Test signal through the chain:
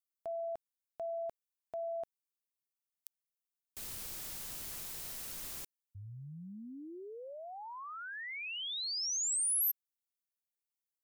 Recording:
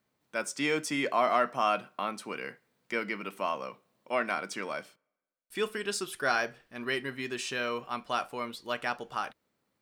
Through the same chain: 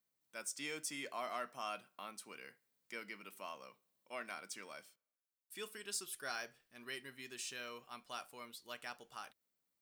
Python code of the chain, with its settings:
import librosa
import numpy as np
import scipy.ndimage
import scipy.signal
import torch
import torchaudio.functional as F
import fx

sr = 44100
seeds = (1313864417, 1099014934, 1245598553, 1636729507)

p1 = F.preemphasis(torch.from_numpy(x), 0.8).numpy()
p2 = np.clip(p1, -10.0 ** (-27.0 / 20.0), 10.0 ** (-27.0 / 20.0))
p3 = p1 + (p2 * librosa.db_to_amplitude(-11.0))
y = p3 * librosa.db_to_amplitude(-6.0)